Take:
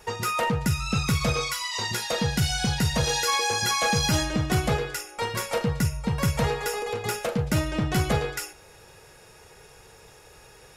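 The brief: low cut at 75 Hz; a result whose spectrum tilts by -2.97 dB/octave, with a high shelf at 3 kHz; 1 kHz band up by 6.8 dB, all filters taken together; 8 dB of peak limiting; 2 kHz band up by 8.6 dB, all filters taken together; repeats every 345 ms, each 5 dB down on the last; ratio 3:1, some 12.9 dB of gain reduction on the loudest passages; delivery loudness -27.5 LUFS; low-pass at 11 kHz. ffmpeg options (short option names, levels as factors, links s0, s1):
-af "highpass=75,lowpass=11000,equalizer=f=1000:t=o:g=6,equalizer=f=2000:t=o:g=7.5,highshelf=f=3000:g=4,acompressor=threshold=0.0251:ratio=3,alimiter=level_in=1.19:limit=0.0631:level=0:latency=1,volume=0.841,aecho=1:1:345|690|1035|1380|1725|2070|2415:0.562|0.315|0.176|0.0988|0.0553|0.031|0.0173,volume=1.88"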